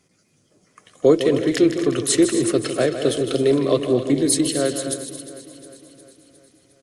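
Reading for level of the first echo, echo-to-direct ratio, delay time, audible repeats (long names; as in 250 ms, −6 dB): −10.0 dB, −6.0 dB, 156 ms, 15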